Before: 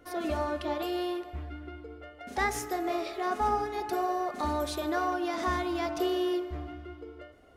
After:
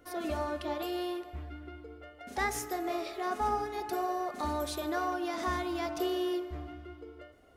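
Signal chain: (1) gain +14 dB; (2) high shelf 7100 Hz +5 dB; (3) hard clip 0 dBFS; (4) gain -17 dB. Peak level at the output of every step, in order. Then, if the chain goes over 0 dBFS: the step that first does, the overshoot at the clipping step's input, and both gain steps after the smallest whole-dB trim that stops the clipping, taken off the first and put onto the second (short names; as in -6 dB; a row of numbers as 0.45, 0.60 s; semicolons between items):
-3.0, -3.0, -3.0, -20.0 dBFS; no overload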